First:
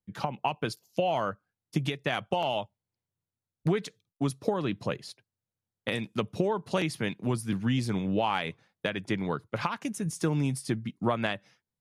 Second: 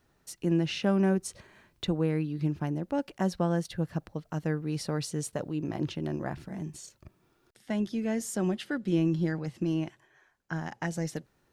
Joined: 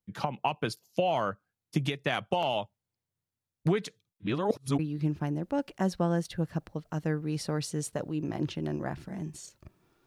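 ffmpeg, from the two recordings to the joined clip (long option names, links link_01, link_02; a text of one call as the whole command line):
ffmpeg -i cue0.wav -i cue1.wav -filter_complex "[0:a]apad=whole_dur=10.06,atrim=end=10.06,asplit=2[link_01][link_02];[link_01]atrim=end=4.202[link_03];[link_02]atrim=start=4.198:end=4.792,asetpts=PTS-STARTPTS,areverse[link_04];[1:a]atrim=start=2.188:end=7.46[link_05];[link_03][link_04]acrossfade=duration=0.004:curve1=hsin:curve2=hsin[link_06];[link_06][link_05]acrossfade=duration=0.004:curve1=hsin:curve2=hsin" out.wav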